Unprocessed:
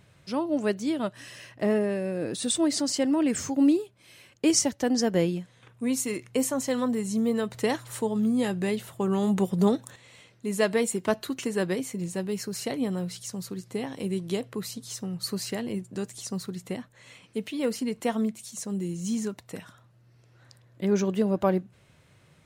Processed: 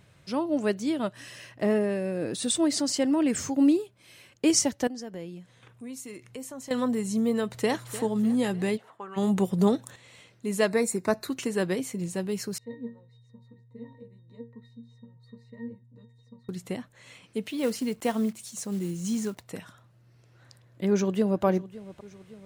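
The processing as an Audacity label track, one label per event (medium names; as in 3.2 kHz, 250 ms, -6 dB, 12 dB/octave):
4.870000	6.710000	compression 2:1, threshold -47 dBFS
7.410000	7.920000	echo throw 300 ms, feedback 55%, level -14.5 dB
8.760000	9.160000	band-pass filter 670 Hz -> 2 kHz, Q 1.7
10.670000	11.280000	Butterworth band-stop 3.1 kHz, Q 2.8
12.580000	16.490000	pitch-class resonator A#, decay 0.25 s
17.490000	19.460000	block-companded coder 5-bit
20.900000	21.440000	echo throw 560 ms, feedback 55%, level -18 dB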